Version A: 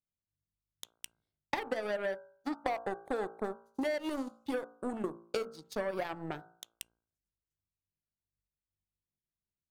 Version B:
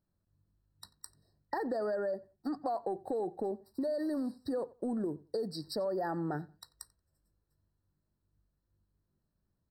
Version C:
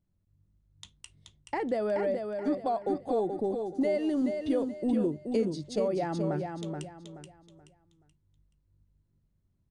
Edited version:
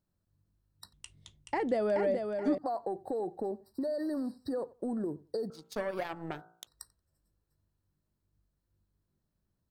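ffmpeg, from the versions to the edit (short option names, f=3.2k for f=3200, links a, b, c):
-filter_complex "[1:a]asplit=3[a][b][c];[a]atrim=end=0.932[d];[2:a]atrim=start=0.928:end=2.582[e];[b]atrim=start=2.578:end=5.502[f];[0:a]atrim=start=5.498:end=6.672[g];[c]atrim=start=6.668[h];[d][e]acrossfade=d=0.004:c1=hsin:c2=hsin[i];[i][f]acrossfade=d=0.004:c1=hsin:c2=hsin[j];[j][g]acrossfade=d=0.004:c1=hsin:c2=hsin[k];[k][h]acrossfade=d=0.004:c1=hsin:c2=hsin"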